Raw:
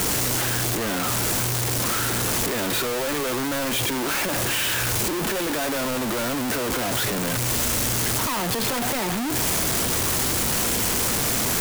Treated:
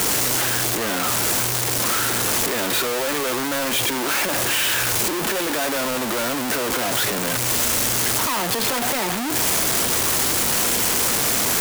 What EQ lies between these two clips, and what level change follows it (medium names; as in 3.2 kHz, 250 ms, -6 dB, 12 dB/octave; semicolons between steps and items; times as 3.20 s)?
bass shelf 210 Hz -9.5 dB; +3.5 dB